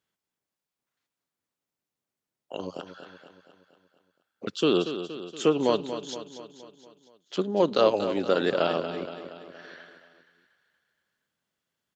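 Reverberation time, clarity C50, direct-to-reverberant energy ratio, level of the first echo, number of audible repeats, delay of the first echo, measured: no reverb audible, no reverb audible, no reverb audible, −10.5 dB, 5, 235 ms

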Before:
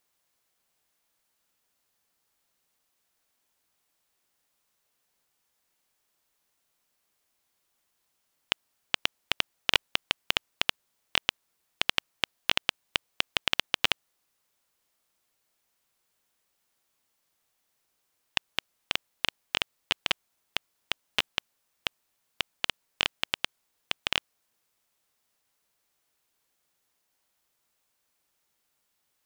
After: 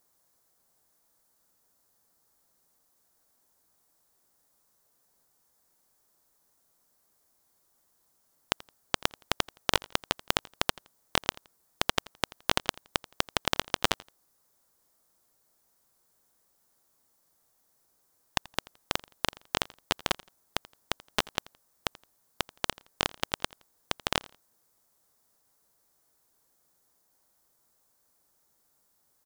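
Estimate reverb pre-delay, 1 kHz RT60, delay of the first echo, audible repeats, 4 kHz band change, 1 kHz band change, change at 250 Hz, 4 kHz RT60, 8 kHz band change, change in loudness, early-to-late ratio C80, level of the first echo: no reverb audible, no reverb audible, 84 ms, 2, −4.0 dB, +4.5 dB, +7.0 dB, no reverb audible, +5.0 dB, −2.0 dB, no reverb audible, −22.0 dB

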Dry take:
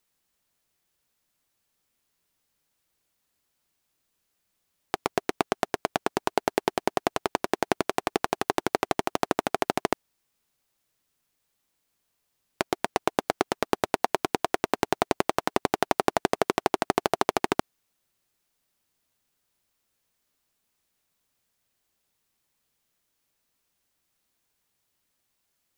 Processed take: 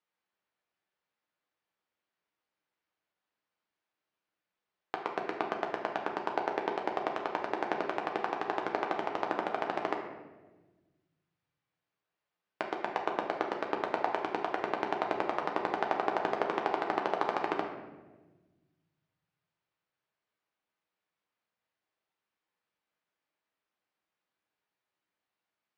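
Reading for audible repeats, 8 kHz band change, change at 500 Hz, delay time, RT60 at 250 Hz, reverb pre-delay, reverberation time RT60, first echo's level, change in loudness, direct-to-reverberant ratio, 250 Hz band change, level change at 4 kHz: no echo audible, below −20 dB, −6.0 dB, no echo audible, 1.9 s, 6 ms, 1.2 s, no echo audible, −5.5 dB, 1.0 dB, −8.0 dB, −11.0 dB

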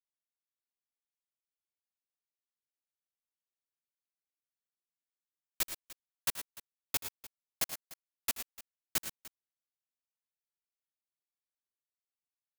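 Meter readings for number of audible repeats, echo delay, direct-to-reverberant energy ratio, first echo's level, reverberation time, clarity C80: 3, 80 ms, no reverb audible, −17.5 dB, no reverb audible, no reverb audible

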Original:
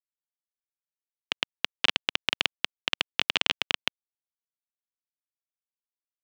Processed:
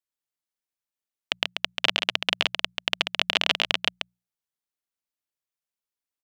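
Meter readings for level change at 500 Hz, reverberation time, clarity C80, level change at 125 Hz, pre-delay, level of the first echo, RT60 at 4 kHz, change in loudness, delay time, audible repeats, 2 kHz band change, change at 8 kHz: +5.5 dB, no reverb audible, no reverb audible, +2.0 dB, no reverb audible, −6.0 dB, no reverb audible, +3.0 dB, 137 ms, 1, +3.0 dB, +3.0 dB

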